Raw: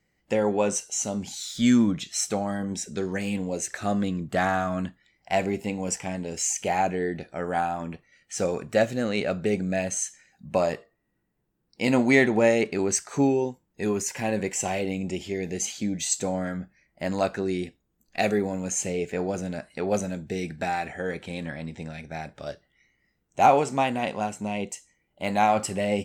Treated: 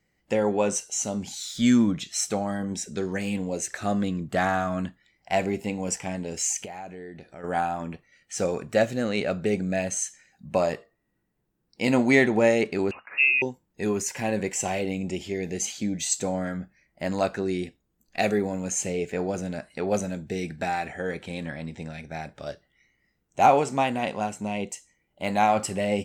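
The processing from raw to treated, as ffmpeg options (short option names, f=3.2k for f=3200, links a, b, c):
-filter_complex "[0:a]asplit=3[a][b][c];[a]afade=t=out:st=6.64:d=0.02[d];[b]acompressor=threshold=-43dB:ratio=2.5:attack=3.2:release=140:knee=1:detection=peak,afade=t=in:st=6.64:d=0.02,afade=t=out:st=7.43:d=0.02[e];[c]afade=t=in:st=7.43:d=0.02[f];[d][e][f]amix=inputs=3:normalize=0,asettb=1/sr,asplit=3[g][h][i];[g]atrim=end=12.914[j];[h]atrim=start=12.91:end=13.42,asetpts=PTS-STARTPTS,afade=t=in:d=0.004:c=qsin,afade=t=out:st=0.506:d=0.004:c=qsin,lowpass=f=2.5k:t=q:w=0.5098,lowpass=f=2.5k:t=q:w=0.6013,lowpass=f=2.5k:t=q:w=0.9,lowpass=f=2.5k:t=q:w=2.563,afreqshift=-2900[k];[i]atrim=start=13.416[l];[j][k]acrossfade=d=0.004:c1=hsin:c2=qsin[m];[m][l]acrossfade=d=0.004:c1=qsin:c2=hsin"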